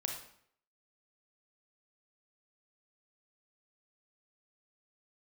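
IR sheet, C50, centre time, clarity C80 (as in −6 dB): 4.5 dB, 31 ms, 8.5 dB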